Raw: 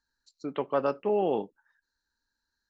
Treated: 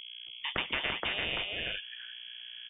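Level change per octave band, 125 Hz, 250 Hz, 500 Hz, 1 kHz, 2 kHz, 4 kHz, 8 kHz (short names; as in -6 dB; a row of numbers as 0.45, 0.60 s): -3.5 dB, -12.5 dB, -16.0 dB, -8.0 dB, +15.0 dB, +21.0 dB, n/a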